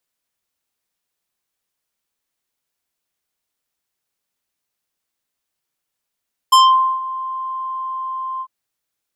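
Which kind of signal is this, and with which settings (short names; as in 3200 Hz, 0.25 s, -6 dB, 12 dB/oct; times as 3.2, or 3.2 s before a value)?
synth note square C6 24 dB/oct, low-pass 1300 Hz, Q 0.74, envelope 3.5 oct, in 0.25 s, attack 9.5 ms, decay 0.47 s, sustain -16 dB, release 0.06 s, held 1.89 s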